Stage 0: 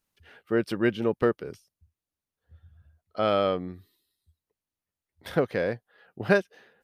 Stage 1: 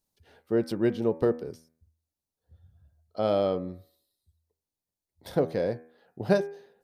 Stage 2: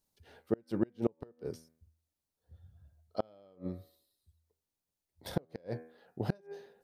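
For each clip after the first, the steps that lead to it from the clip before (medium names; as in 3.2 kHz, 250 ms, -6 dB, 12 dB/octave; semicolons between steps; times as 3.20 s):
high-order bell 1.9 kHz -9.5 dB; de-hum 80.43 Hz, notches 31
inverted gate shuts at -17 dBFS, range -34 dB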